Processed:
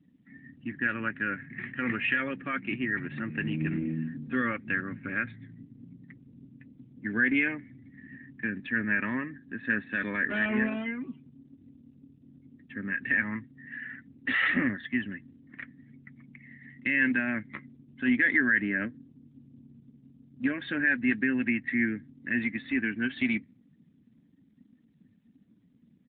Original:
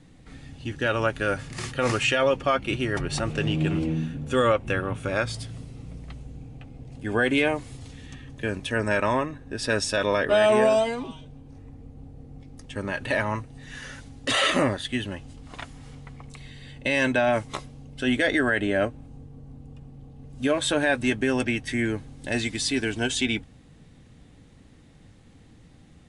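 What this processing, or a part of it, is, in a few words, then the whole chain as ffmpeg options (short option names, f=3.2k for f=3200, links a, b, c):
mobile call with aggressive noise cancelling: -af "highpass=120,firequalizer=gain_entry='entry(140,0);entry(220,10);entry(430,-6);entry(670,-13);entry(1000,-7);entry(1800,13);entry(3200,-5);entry(5000,0);entry(7200,-14);entry(12000,-27)':delay=0.05:min_phase=1,afftdn=nr=20:nf=-41,volume=-8dB" -ar 8000 -c:a libopencore_amrnb -b:a 12200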